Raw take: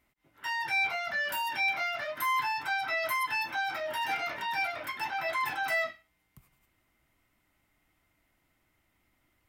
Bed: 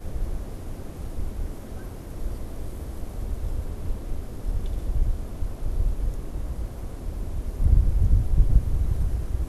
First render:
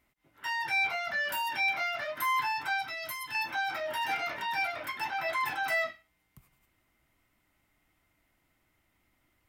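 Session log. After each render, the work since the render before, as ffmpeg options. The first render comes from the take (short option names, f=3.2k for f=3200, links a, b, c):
-filter_complex "[0:a]asettb=1/sr,asplit=3[a][b][c];[a]atrim=end=2.824[d];[b]atrim=start=2.82:end=3.35,asetpts=PTS-STARTPTS,afade=t=in:d=0.004:c=qsin,afade=t=out:st=0.526:d=0.004:c=qsin,acrossover=split=280|3000[e][f][g];[f]acompressor=threshold=-41dB:ratio=6:attack=3.2:release=140:knee=2.83:detection=peak[h];[e][h][g]amix=inputs=3:normalize=0[i];[c]atrim=start=3.346[j];[d][i]acrossfade=d=0.004:c1=hsin:c2=qsin[k];[k][j]acrossfade=d=0.004:c1=qsin:c2=hsin"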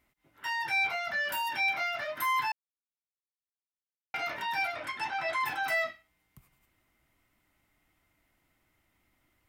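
-filter_complex "[0:a]asettb=1/sr,asplit=3[a][b][c];[a]atrim=end=4.754[d];[b]atrim=start=4.75:end=5.42,asetpts=PTS-STARTPTS,afade=t=in:d=0.004:c=qsin,afade=t=out:st=0.666:d=0.004:c=qsin,lowpass=f=10k:w=0.5412,lowpass=f=10k:w=1.3066[e];[c]atrim=start=5.416[f];[d][e]acrossfade=d=0.004:c1=hsin:c2=qsin[g];[g][f]acrossfade=d=0.004:c1=qsin:c2=hsin,asplit=3[h][i][j];[h]atrim=end=2.52,asetpts=PTS-STARTPTS,afade=t=out:st=2.516:d=0.004:c=hsin[k];[i]atrim=start=2.52:end=4.14,asetpts=PTS-STARTPTS,volume=0[l];[j]atrim=start=4.14,asetpts=PTS-STARTPTS,afade=t=in:d=0.004:c=hsin[m];[k][l][m]concat=n=3:v=0:a=1"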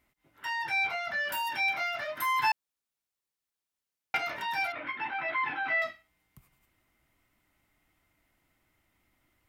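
-filter_complex "[0:a]asettb=1/sr,asplit=3[a][b][c];[a]atrim=end=0.454[d];[b]atrim=start=0.45:end=1.32,asetpts=PTS-STARTPTS,afade=t=in:d=0.004:c=qsin,afade=t=out:st=0.866:d=0.004:c=qsin,highshelf=f=7.1k:g=-6.5[e];[c]atrim=start=1.316[f];[d][e]acrossfade=d=0.004:c1=hsin:c2=qsin[g];[g][f]acrossfade=d=0.004:c1=qsin:c2=hsin,asplit=3[h][i][j];[h]afade=t=out:st=2.42:d=0.02[k];[i]acontrast=61,afade=t=in:st=2.42:d=0.02,afade=t=out:st=4.17:d=0.02[l];[j]afade=t=in:st=4.17:d=0.02[m];[k][l][m]amix=inputs=3:normalize=0,asettb=1/sr,asplit=3[n][o][p];[n]atrim=end=4.724[q];[o]atrim=start=4.72:end=5.82,asetpts=PTS-STARTPTS,afade=t=in:d=0.004:c=qsin,afade=t=out:st=1.096:d=0.004:c=qsin,highpass=120,equalizer=f=280:t=q:w=4:g=7,equalizer=f=690:t=q:w=4:g=-4,equalizer=f=2.2k:t=q:w=4:g=3,lowpass=f=3.1k:w=0.5412,lowpass=f=3.1k:w=1.3066[r];[p]atrim=start=5.816[s];[q][r]acrossfade=d=0.004:c1=hsin:c2=qsin[t];[t][s]acrossfade=d=0.004:c1=qsin:c2=hsin"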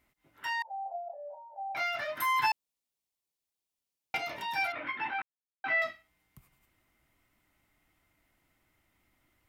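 -filter_complex "[0:a]asettb=1/sr,asplit=3[a][b][c];[a]atrim=end=0.624[d];[b]atrim=start=0.62:end=1.75,asetpts=PTS-STARTPTS,afade=t=in:d=0.004:c=qsin,afade=t=out:st=1.126:d=0.004:c=qsin,asuperpass=centerf=650:order=8:qfactor=2.2[e];[c]atrim=start=1.746[f];[d][e]acrossfade=d=0.004:c1=hsin:c2=qsin[g];[g][f]acrossfade=d=0.004:c1=qsin:c2=hsin,asettb=1/sr,asplit=3[h][i][j];[h]atrim=end=2.464[k];[i]atrim=start=2.46:end=4.56,asetpts=PTS-STARTPTS,afade=t=in:d=0.004:c=qsin,afade=t=out:st=2.096:d=0.004:c=qsin,equalizer=f=1.5k:t=o:w=0.77:g=-9.5[l];[j]atrim=start=4.556[m];[k][l]acrossfade=d=0.004:c1=hsin:c2=qsin[n];[n][m]acrossfade=d=0.004:c1=qsin:c2=hsin,asplit=3[o][p][q];[o]atrim=end=5.22,asetpts=PTS-STARTPTS,afade=t=out:st=5.216:d=0.004:c=hsin[r];[p]atrim=start=5.22:end=5.64,asetpts=PTS-STARTPTS,volume=0[s];[q]atrim=start=5.64,asetpts=PTS-STARTPTS,afade=t=in:d=0.004:c=hsin[t];[r][s][t]concat=n=3:v=0:a=1"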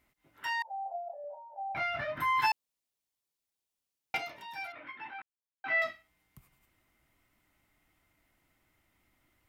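-filter_complex "[0:a]asettb=1/sr,asplit=3[a][b][c];[a]atrim=end=1.244[d];[b]atrim=start=1.24:end=2.4,asetpts=PTS-STARTPTS,afade=t=in:d=0.004:c=qsin,afade=t=out:st=1.156:d=0.004:c=qsin,bass=f=250:g=14,treble=f=4k:g=-14[e];[c]atrim=start=2.396[f];[d][e]acrossfade=d=0.004:c1=hsin:c2=qsin[g];[g][f]acrossfade=d=0.004:c1=qsin:c2=hsin,asplit=3[h][i][j];[h]atrim=end=4.33,asetpts=PTS-STARTPTS,afade=t=out:st=4.16:d=0.17:silence=0.334965[k];[i]atrim=start=4.33:end=5.59,asetpts=PTS-STARTPTS,volume=-9.5dB[l];[j]atrim=start=5.59,asetpts=PTS-STARTPTS,afade=t=in:d=0.17:silence=0.334965[m];[k][l][m]concat=n=3:v=0:a=1"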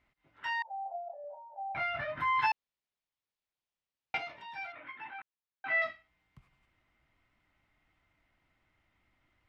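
-af "lowpass=3.6k,equalizer=f=320:t=o:w=1.7:g=-4"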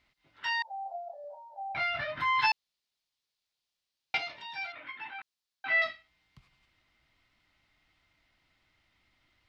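-af "equalizer=f=4.4k:w=1:g=13"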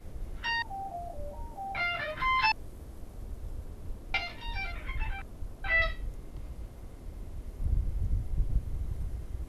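-filter_complex "[1:a]volume=-11dB[a];[0:a][a]amix=inputs=2:normalize=0"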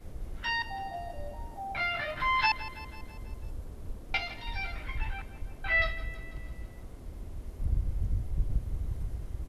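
-af "aecho=1:1:164|328|492|656|820|984:0.168|0.099|0.0584|0.0345|0.0203|0.012"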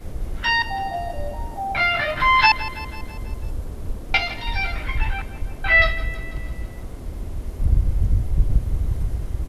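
-af "volume=11.5dB"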